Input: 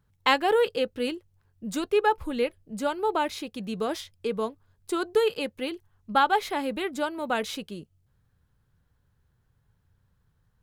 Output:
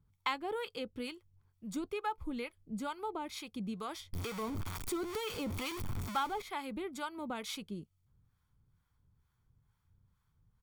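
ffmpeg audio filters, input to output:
-filter_complex "[0:a]asettb=1/sr,asplit=3[a][b][c];[a]atrim=end=4.134[d];[b]atrim=start=4.13:end=6.42,asetpts=PTS-STARTPTS,afade=t=in:d=0.004:c=qsin,afade=t=out:st=2.286:d=0.004:c=qsin,aeval=exprs='val(0)+0.5*0.0562*sgn(val(0))':c=same[e];[c]atrim=start=6.416[f];[d][e]acrossfade=d=0.004:c1=hsin:c2=qsin[g];[g][f]acrossfade=d=0.004:c1=qsin:c2=hsin,aecho=1:1:0.9:0.43,acompressor=threshold=-32dB:ratio=2,acrossover=split=660[h][i];[h]aeval=exprs='val(0)*(1-0.7/2+0.7/2*cos(2*PI*2.2*n/s))':c=same[j];[i]aeval=exprs='val(0)*(1-0.7/2-0.7/2*cos(2*PI*2.2*n/s))':c=same[k];[j][k]amix=inputs=2:normalize=0,volume=-3.5dB"

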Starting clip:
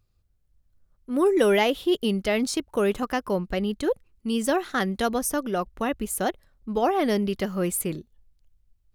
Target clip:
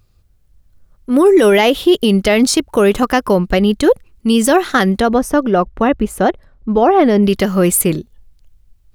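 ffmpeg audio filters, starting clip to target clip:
-filter_complex "[0:a]asplit=3[a][b][c];[a]afade=t=out:st=4.99:d=0.02[d];[b]lowpass=f=1.5k:p=1,afade=t=in:st=4.99:d=0.02,afade=t=out:st=7.22:d=0.02[e];[c]afade=t=in:st=7.22:d=0.02[f];[d][e][f]amix=inputs=3:normalize=0,alimiter=level_in=16dB:limit=-1dB:release=50:level=0:latency=1,volume=-2dB"

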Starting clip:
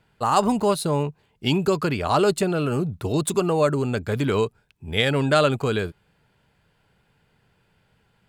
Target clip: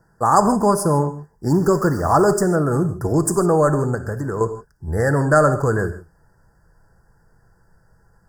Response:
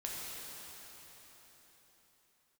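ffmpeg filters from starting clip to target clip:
-filter_complex "[0:a]asubboost=boost=4:cutoff=79,asettb=1/sr,asplit=3[a][b][c];[a]atrim=end=1.504[d];[b]atrim=start=1.5:end=2.44,asetpts=PTS-STARTPTS,afade=t=in:d=0.004:c=qsin,afade=t=out:st=0.936:d=0.004:c=qsin,aeval=exprs='val(0)*gte(abs(val(0)),0.0158)':c=same[e];[c]atrim=start=2.436[f];[d][e]acrossfade=d=0.004:c1=hsin:c2=qsin[g];[g][f]acrossfade=d=0.004:c1=qsin:c2=hsin,asettb=1/sr,asplit=3[h][i][j];[h]atrim=end=3.944[k];[i]atrim=start=3.94:end=4.41,asetpts=PTS-STARTPTS,afade=t=in:d=0.004:c=qsin,afade=t=out:st=0.466:d=0.004:c=qsin,acompressor=threshold=-28dB:ratio=4[l];[j]atrim=start=4.406[m];[k][l]acrossfade=d=0.004:c1=hsin:c2=qsin[n];[n][m]acrossfade=d=0.004:c1=qsin:c2=hsin,asuperstop=centerf=3000:order=20:qfactor=1,asplit=2[o][p];[1:a]atrim=start_sample=2205,afade=t=out:st=0.21:d=0.01,atrim=end_sample=9702,adelay=6[q];[p][q]afir=irnorm=-1:irlink=0,volume=-6.5dB[r];[o][r]amix=inputs=2:normalize=0,volume=5dB"

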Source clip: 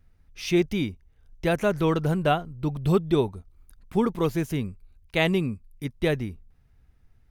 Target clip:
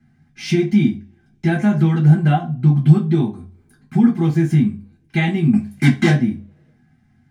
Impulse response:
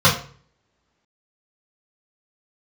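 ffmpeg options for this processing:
-filter_complex "[0:a]acompressor=threshold=-27dB:ratio=3,asettb=1/sr,asplit=3[a][b][c];[a]atrim=end=5.534[d];[b]atrim=start=5.53:end=6.1,asetpts=PTS-STARTPTS,afade=t=in:d=0.004:c=qsin,afade=t=out:st=0.566:d=0.004:c=qsin,asplit=2[e][f];[f]highpass=f=720:p=1,volume=32dB,asoftclip=type=tanh:threshold=-17dB[g];[e][g]amix=inputs=2:normalize=0,lowpass=f=5k:p=1,volume=-6dB[h];[c]atrim=start=6.096[i];[d][h]acrossfade=d=0.004:c1=hsin:c2=qsin[j];[j][i]acrossfade=d=0.004:c1=qsin:c2=hsin[k];[1:a]atrim=start_sample=2205,asetrate=66150,aresample=44100[l];[k][l]afir=irnorm=-1:irlink=0,volume=-12dB"

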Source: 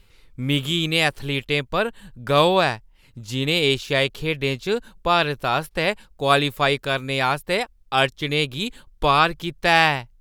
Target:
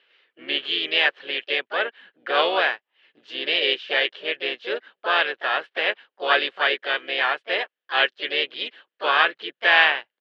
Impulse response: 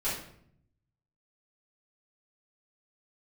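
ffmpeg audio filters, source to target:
-filter_complex "[0:a]asplit=4[a][b][c][d];[b]asetrate=37084,aresample=44100,atempo=1.18921,volume=-9dB[e];[c]asetrate=55563,aresample=44100,atempo=0.793701,volume=-7dB[f];[d]asetrate=58866,aresample=44100,atempo=0.749154,volume=-13dB[g];[a][e][f][g]amix=inputs=4:normalize=0,highpass=f=390:w=0.5412,highpass=f=390:w=1.3066,equalizer=f=920:t=q:w=4:g=-3,equalizer=f=1.7k:t=q:w=4:g=10,equalizer=f=3k:t=q:w=4:g=8,lowpass=f=3.7k:w=0.5412,lowpass=f=3.7k:w=1.3066,volume=-5dB"

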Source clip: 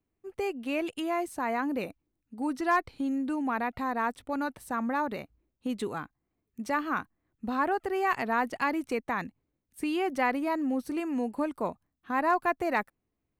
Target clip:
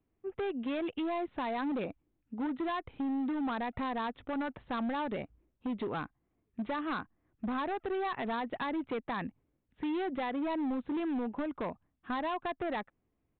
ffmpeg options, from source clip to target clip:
-af "aemphasis=mode=reproduction:type=75kf,acompressor=threshold=-31dB:ratio=10,aresample=8000,asoftclip=type=hard:threshold=-34dB,aresample=44100,volume=3.5dB"

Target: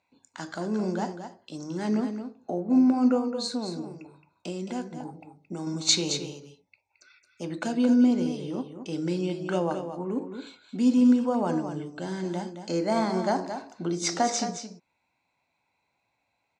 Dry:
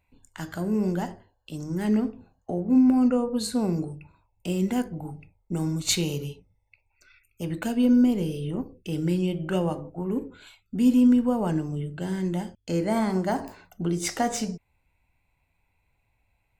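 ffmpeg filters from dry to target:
-filter_complex "[0:a]asettb=1/sr,asplit=3[a][b][c];[a]atrim=end=3.184[d];[b]atrim=start=3.18:end=5.67,asetpts=PTS-STARTPTS,afade=t=in:d=0.004:c=qsin,afade=t=out:st=2.486:d=0.004:c=qsin,acompressor=threshold=-28dB:ratio=4[e];[c]atrim=start=5.666[f];[d][e]acrossfade=d=0.004:c1=hsin:c2=qsin[g];[g][f]acrossfade=d=0.004:c1=qsin:c2=hsin,highpass=270,equalizer=f=430:t=q:w=4:g=-4,equalizer=f=1.9k:t=q:w=4:g=-5,equalizer=f=2.9k:t=q:w=4:g=-7,equalizer=f=4.1k:t=q:w=4:g=4,equalizer=f=5.9k:t=q:w=4:g=3,lowpass=f=7.1k:w=0.5412,lowpass=f=7.1k:w=1.3066,aecho=1:1:220:0.355,volume=2dB"

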